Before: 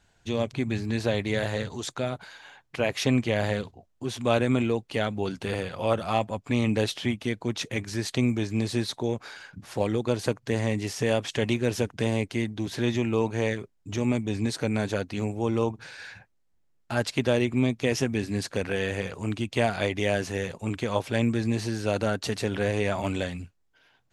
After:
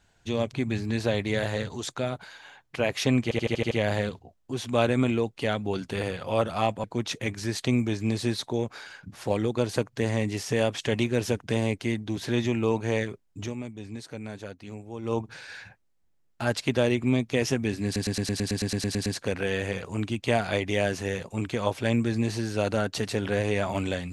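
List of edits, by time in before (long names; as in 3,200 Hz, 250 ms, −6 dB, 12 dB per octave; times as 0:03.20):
0:03.23: stutter 0.08 s, 7 plays
0:06.36–0:07.34: remove
0:13.89–0:15.68: duck −11 dB, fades 0.16 s
0:18.35: stutter 0.11 s, 12 plays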